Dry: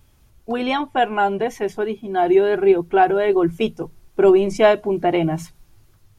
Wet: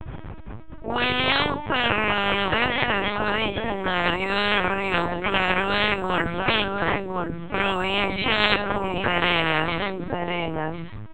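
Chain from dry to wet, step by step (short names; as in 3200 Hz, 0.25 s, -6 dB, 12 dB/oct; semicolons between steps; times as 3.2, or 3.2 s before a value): low-pass opened by the level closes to 1900 Hz, open at -13 dBFS; high shelf 2700 Hz -6 dB; transient shaper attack -10 dB, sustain +5 dB; time stretch by phase-locked vocoder 1.8×; echo 1.055 s -17 dB; LPC vocoder at 8 kHz pitch kept; spectral compressor 10:1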